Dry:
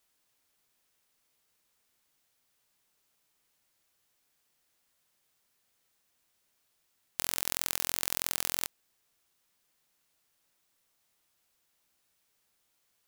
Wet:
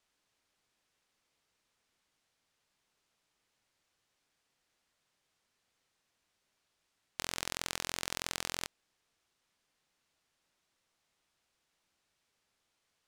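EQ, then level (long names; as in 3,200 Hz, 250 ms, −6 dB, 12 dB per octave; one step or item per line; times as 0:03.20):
high-frequency loss of the air 60 metres
0.0 dB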